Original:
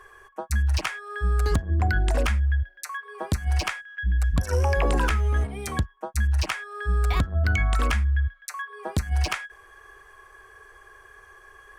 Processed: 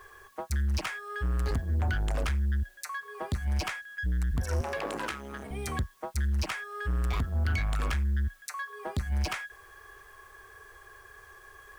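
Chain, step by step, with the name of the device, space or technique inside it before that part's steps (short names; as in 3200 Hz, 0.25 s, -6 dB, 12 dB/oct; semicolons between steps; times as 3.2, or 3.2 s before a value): open-reel tape (soft clip -24.5 dBFS, distortion -11 dB; bell 100 Hz +4 dB 1.04 oct; white noise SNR 35 dB); 4.61–5.51 HPF 230 Hz 12 dB/oct; gain -2 dB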